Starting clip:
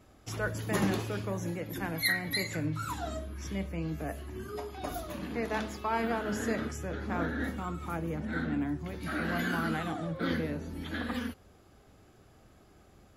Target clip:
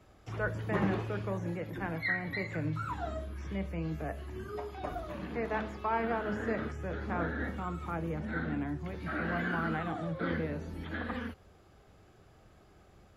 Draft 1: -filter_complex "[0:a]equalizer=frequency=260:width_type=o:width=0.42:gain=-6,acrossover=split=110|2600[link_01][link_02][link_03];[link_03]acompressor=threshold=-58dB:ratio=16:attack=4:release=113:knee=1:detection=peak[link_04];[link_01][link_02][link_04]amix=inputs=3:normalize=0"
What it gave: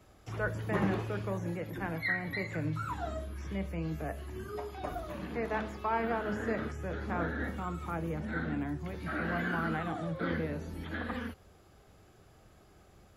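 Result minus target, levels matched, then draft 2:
8,000 Hz band +4.5 dB
-filter_complex "[0:a]equalizer=frequency=260:width_type=o:width=0.42:gain=-6,acrossover=split=110|2600[link_01][link_02][link_03];[link_03]acompressor=threshold=-58dB:ratio=16:attack=4:release=113:knee=1:detection=peak,highshelf=frequency=7000:gain=-8.5[link_04];[link_01][link_02][link_04]amix=inputs=3:normalize=0"

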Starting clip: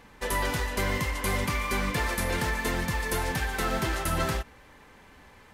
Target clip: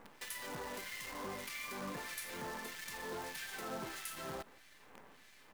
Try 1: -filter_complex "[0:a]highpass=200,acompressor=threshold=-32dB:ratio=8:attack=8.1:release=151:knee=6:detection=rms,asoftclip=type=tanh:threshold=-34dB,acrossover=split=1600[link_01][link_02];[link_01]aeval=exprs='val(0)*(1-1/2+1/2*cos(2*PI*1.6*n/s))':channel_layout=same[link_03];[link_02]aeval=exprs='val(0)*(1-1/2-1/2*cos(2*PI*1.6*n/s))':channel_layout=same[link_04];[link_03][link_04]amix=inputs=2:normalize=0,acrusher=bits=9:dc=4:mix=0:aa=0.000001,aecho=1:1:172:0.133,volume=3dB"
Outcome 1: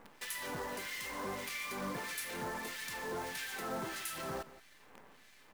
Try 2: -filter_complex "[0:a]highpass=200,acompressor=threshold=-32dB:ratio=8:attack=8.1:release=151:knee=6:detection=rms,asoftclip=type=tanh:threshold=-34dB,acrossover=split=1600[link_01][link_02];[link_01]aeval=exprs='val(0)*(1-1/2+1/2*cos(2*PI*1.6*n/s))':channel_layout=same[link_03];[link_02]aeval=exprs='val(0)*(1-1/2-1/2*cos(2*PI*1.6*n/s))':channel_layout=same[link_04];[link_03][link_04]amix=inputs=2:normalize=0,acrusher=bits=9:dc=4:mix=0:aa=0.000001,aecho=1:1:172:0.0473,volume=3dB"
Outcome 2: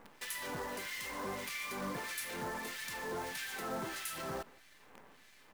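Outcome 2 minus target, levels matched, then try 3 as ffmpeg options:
downward compressor: peak gain reduction −5.5 dB
-filter_complex "[0:a]highpass=200,acompressor=threshold=-38.5dB:ratio=8:attack=8.1:release=151:knee=6:detection=rms,asoftclip=type=tanh:threshold=-34dB,acrossover=split=1600[link_01][link_02];[link_01]aeval=exprs='val(0)*(1-1/2+1/2*cos(2*PI*1.6*n/s))':channel_layout=same[link_03];[link_02]aeval=exprs='val(0)*(1-1/2-1/2*cos(2*PI*1.6*n/s))':channel_layout=same[link_04];[link_03][link_04]amix=inputs=2:normalize=0,acrusher=bits=9:dc=4:mix=0:aa=0.000001,aecho=1:1:172:0.0473,volume=3dB"

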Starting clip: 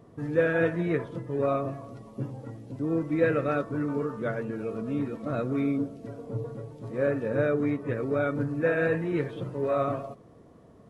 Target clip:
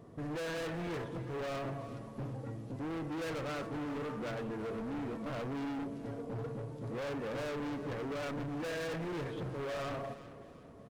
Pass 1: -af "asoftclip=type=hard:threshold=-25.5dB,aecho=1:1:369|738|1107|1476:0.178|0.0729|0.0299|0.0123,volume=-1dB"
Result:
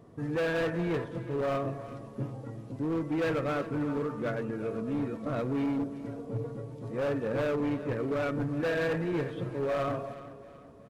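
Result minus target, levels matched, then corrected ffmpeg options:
hard clipping: distortion −7 dB
-af "asoftclip=type=hard:threshold=-36dB,aecho=1:1:369|738|1107|1476:0.178|0.0729|0.0299|0.0123,volume=-1dB"

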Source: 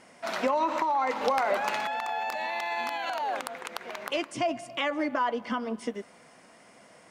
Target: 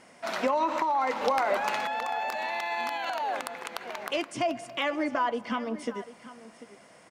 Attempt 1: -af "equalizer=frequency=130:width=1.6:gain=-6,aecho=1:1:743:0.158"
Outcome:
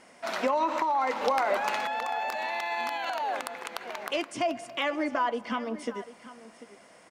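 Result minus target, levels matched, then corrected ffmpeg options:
125 Hz band −3.0 dB
-af "aecho=1:1:743:0.158"

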